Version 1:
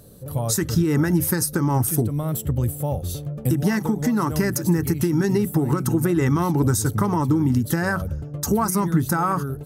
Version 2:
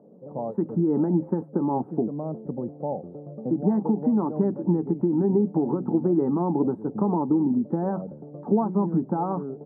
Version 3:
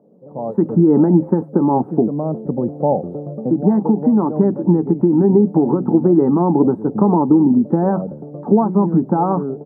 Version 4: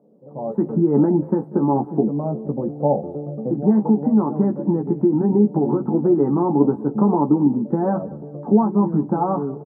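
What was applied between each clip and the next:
elliptic band-pass 190–860 Hz, stop band 70 dB
AGC gain up to 16.5 dB; gain -1 dB
flange 1.5 Hz, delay 4 ms, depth 1.3 ms, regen -84%; doubler 14 ms -5 dB; feedback echo 0.19 s, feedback 31%, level -22 dB

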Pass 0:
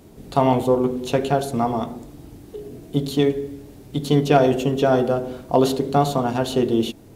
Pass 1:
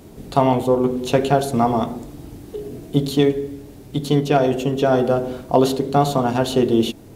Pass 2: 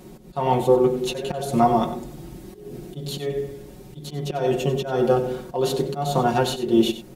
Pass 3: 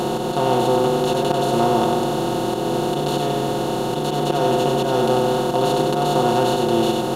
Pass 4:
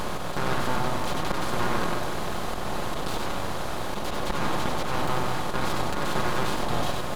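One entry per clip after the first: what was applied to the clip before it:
vocal rider 0.5 s; gain +2 dB
auto swell 0.223 s; comb 5.5 ms, depth 78%; echo 94 ms -13 dB; gain -2.5 dB
per-bin compression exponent 0.2; gain -6 dB
full-wave rectifier; gain -5.5 dB

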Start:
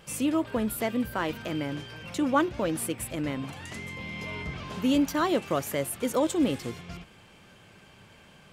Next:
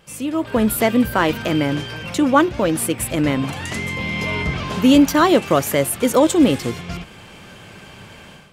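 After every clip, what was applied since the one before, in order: AGC gain up to 13.5 dB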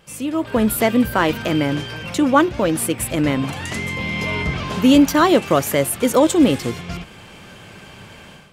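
nothing audible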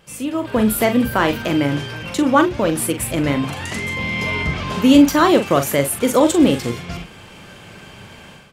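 doubler 42 ms -8.5 dB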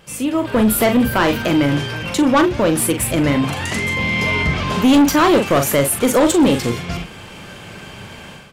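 soft clip -12.5 dBFS, distortion -11 dB; gain +4.5 dB

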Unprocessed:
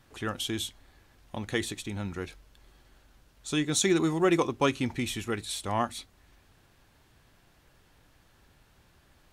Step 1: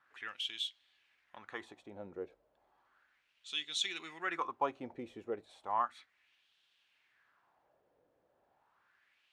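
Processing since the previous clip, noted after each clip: wah 0.34 Hz 500–3300 Hz, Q 3.1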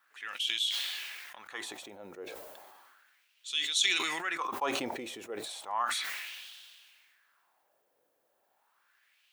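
RIAA curve recording; sustainer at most 29 dB/s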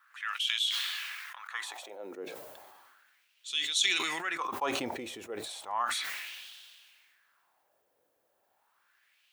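high-pass sweep 1200 Hz -> 71 Hz, 1.62–2.63

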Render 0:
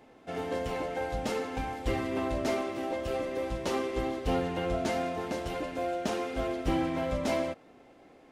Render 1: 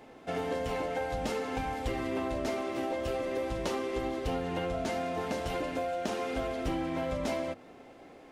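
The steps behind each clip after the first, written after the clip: notches 50/100/150/200/250/300/350 Hz; compressor, threshold -34 dBFS, peak gain reduction 9.5 dB; gain +4.5 dB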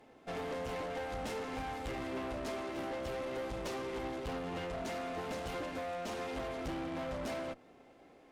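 tube stage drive 36 dB, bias 0.55; upward expander 1.5:1, over -50 dBFS; gain +1 dB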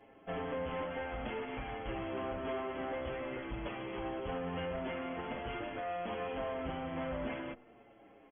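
brick-wall FIR low-pass 3400 Hz; endless flanger 6.9 ms -0.49 Hz; gain +3.5 dB

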